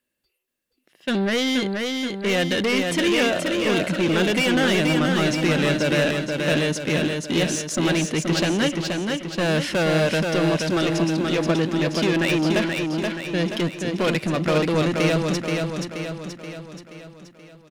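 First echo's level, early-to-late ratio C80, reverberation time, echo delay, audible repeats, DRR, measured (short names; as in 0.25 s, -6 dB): -4.0 dB, none, none, 0.478 s, 6, none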